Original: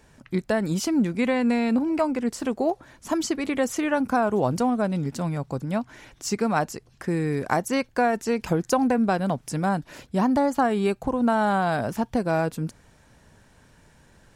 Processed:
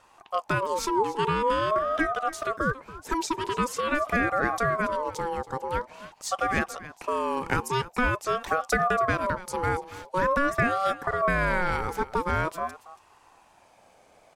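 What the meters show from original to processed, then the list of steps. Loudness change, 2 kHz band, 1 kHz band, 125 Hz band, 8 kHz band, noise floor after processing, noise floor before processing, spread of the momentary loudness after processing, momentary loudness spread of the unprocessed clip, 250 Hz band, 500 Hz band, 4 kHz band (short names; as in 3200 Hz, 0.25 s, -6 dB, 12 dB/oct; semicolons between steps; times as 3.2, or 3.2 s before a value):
-2.5 dB, +4.0 dB, +1.0 dB, -4.5 dB, -3.0 dB, -59 dBFS, -57 dBFS, 8 LU, 8 LU, -10.5 dB, -2.5 dB, 0.0 dB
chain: wow and flutter 23 cents; echo 0.281 s -16 dB; ring modulator with a swept carrier 810 Hz, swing 20%, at 0.46 Hz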